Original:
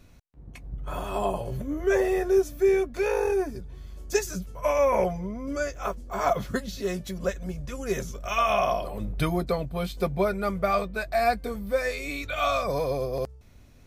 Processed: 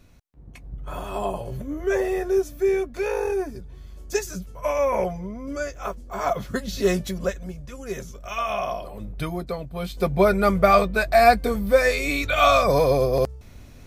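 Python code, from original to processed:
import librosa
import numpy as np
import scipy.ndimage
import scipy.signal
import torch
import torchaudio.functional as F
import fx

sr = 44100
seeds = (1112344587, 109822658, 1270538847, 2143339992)

y = fx.gain(x, sr, db=fx.line((6.5, 0.0), (6.87, 9.0), (7.61, -3.0), (9.66, -3.0), (10.32, 8.5)))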